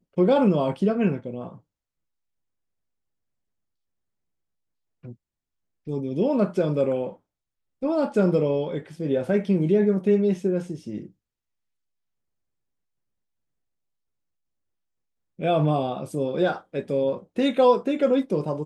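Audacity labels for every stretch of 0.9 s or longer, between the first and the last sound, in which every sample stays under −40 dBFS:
1.570000	5.040000	silence
11.060000	15.390000	silence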